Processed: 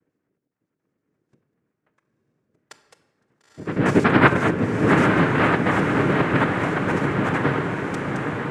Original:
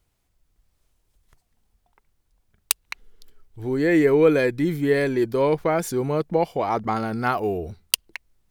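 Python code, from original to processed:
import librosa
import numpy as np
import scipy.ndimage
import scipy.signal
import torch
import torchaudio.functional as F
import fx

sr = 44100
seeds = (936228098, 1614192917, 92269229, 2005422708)

p1 = fx.spec_dropout(x, sr, seeds[0], share_pct=39)
p2 = scipy.signal.sosfilt(scipy.signal.butter(2, 1300.0, 'lowpass', fs=sr, output='sos'), p1)
p3 = fx.low_shelf(p2, sr, hz=300.0, db=7.5)
p4 = fx.hum_notches(p3, sr, base_hz=50, count=9)
p5 = fx.noise_vocoder(p4, sr, seeds[1], bands=3)
p6 = p5 + fx.echo_diffused(p5, sr, ms=943, feedback_pct=60, wet_db=-4.5, dry=0)
p7 = fx.room_shoebox(p6, sr, seeds[2], volume_m3=730.0, walls='mixed', distance_m=0.53)
y = F.gain(torch.from_numpy(p7), -1.0).numpy()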